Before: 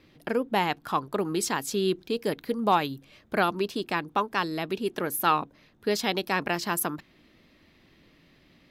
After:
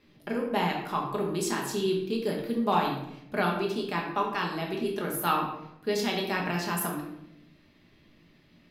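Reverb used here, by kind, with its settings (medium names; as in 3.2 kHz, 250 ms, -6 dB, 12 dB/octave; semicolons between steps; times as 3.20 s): simulated room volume 230 m³, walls mixed, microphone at 1.3 m; trim -6 dB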